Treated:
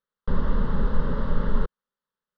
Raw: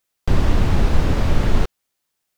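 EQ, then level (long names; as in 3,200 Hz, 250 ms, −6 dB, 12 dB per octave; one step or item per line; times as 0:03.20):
low-pass filter 3,300 Hz 24 dB per octave
phaser with its sweep stopped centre 480 Hz, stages 8
−4.0 dB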